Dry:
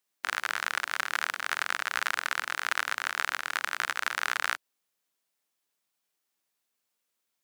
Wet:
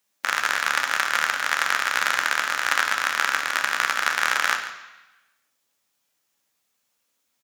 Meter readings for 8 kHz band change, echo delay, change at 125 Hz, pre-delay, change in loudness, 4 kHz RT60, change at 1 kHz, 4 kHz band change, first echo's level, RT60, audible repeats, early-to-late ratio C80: +9.0 dB, 0.142 s, n/a, 3 ms, +8.0 dB, 1.0 s, +8.5 dB, +8.0 dB, -14.5 dB, 1.0 s, 1, 9.5 dB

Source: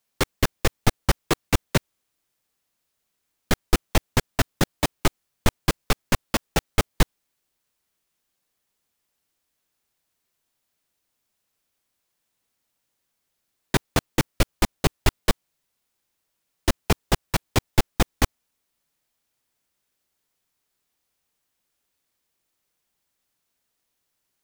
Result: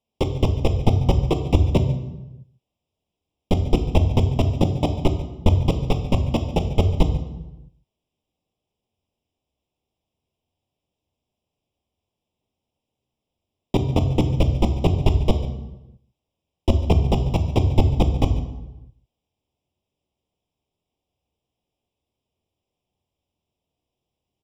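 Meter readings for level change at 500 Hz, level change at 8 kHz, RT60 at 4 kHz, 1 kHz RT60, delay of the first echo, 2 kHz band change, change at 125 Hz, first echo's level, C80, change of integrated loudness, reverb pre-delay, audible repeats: +4.0 dB, under -10 dB, 0.75 s, 0.95 s, 0.143 s, -10.5 dB, +9.0 dB, -17.0 dB, 11.5 dB, +4.0 dB, 3 ms, 1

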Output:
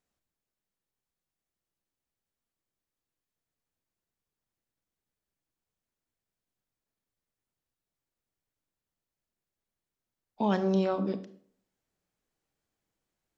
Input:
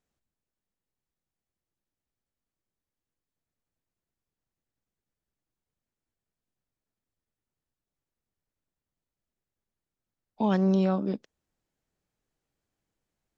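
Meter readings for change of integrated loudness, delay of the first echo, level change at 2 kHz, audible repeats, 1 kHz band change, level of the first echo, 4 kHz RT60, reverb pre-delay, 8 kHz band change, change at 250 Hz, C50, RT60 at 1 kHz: -3.0 dB, none, 0.0 dB, none, 0.0 dB, none, 0.40 s, 27 ms, n/a, -4.0 dB, 14.0 dB, 0.55 s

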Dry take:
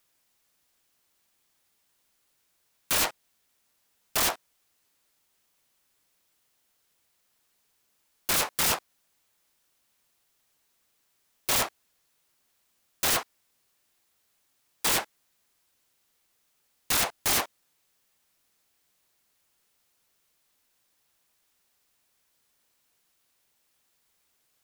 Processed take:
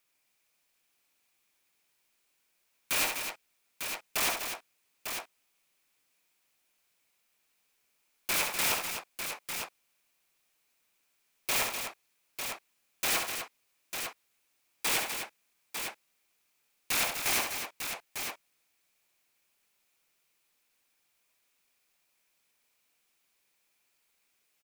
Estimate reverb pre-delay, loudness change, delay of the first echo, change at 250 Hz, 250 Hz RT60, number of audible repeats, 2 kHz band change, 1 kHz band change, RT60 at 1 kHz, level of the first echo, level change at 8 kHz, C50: none, -5.5 dB, 66 ms, -4.5 dB, none, 4, +0.5 dB, -3.0 dB, none, -5.5 dB, -3.0 dB, none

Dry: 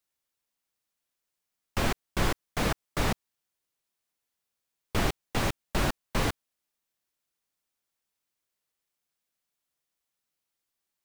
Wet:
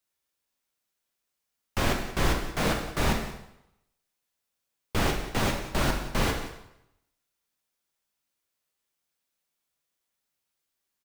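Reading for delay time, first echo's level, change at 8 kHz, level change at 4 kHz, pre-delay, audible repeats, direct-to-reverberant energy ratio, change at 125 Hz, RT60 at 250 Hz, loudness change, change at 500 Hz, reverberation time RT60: 0.18 s, -15.5 dB, +2.0 dB, +2.5 dB, 5 ms, 1, 1.0 dB, +2.0 dB, 0.75 s, +2.0 dB, +2.5 dB, 0.80 s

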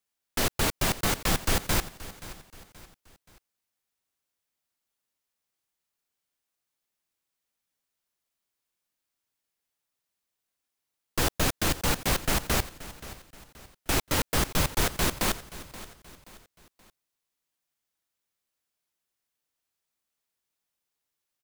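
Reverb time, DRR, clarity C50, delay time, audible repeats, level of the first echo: none, none, none, 0.527 s, 3, -16.5 dB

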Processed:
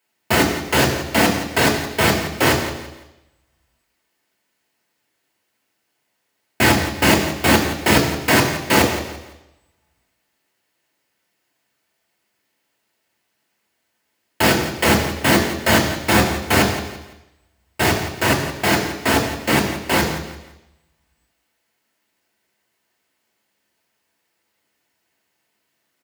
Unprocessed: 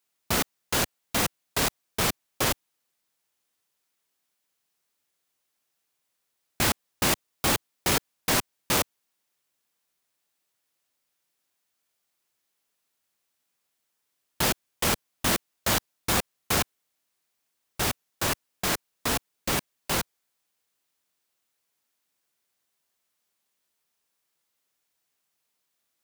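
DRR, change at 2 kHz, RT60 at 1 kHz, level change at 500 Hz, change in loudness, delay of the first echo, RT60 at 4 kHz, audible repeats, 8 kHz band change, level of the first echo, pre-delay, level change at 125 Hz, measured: 0.0 dB, +12.5 dB, 1.0 s, +13.0 dB, +9.5 dB, 0.169 s, 1.0 s, 3, +4.0 dB, -11.0 dB, 3 ms, +12.5 dB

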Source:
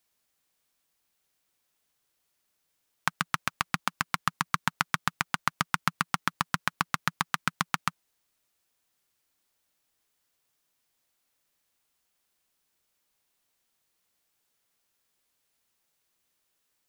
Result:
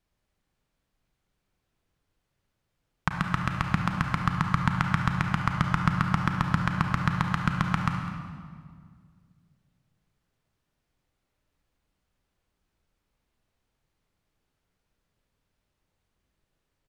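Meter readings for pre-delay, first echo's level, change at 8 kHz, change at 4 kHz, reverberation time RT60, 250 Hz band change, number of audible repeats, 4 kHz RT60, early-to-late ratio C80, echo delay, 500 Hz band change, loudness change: 30 ms, -16.0 dB, -9.5 dB, -4.5 dB, 2.0 s, +11.0 dB, 1, 1.4 s, 5.0 dB, 0.204 s, +4.0 dB, +3.5 dB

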